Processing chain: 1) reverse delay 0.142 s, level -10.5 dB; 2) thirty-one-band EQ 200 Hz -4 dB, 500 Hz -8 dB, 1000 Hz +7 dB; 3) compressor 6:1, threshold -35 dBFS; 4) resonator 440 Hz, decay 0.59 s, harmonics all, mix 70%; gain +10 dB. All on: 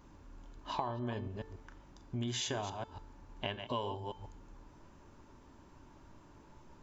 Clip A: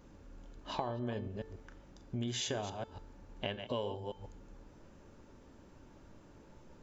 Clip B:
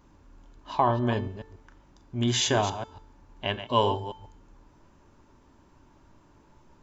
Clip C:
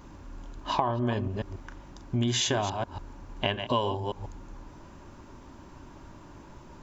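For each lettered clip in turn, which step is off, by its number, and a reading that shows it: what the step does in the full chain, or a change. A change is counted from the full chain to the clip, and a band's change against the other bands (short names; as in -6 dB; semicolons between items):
2, 1 kHz band -2.5 dB; 3, mean gain reduction 4.0 dB; 4, loudness change +10.0 LU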